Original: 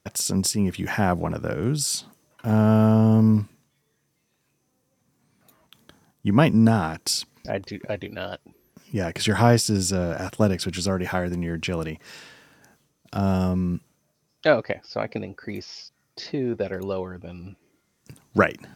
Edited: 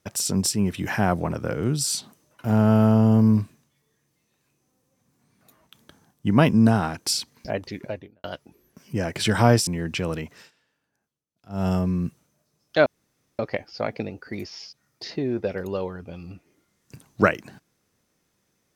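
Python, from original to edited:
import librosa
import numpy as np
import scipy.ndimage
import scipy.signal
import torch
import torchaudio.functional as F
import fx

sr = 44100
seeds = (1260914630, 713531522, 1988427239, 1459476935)

y = fx.studio_fade_out(x, sr, start_s=7.75, length_s=0.49)
y = fx.edit(y, sr, fx.cut(start_s=9.67, length_s=1.69),
    fx.fade_down_up(start_s=12.01, length_s=1.36, db=-22.0, fade_s=0.19),
    fx.insert_room_tone(at_s=14.55, length_s=0.53), tone=tone)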